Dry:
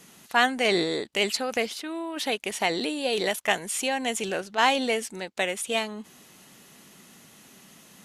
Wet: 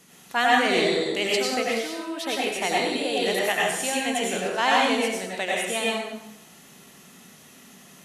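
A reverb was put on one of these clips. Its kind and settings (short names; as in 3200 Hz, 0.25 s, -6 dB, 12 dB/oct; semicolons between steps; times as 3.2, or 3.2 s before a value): plate-style reverb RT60 0.84 s, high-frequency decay 0.85×, pre-delay 80 ms, DRR -4.5 dB; gain -3 dB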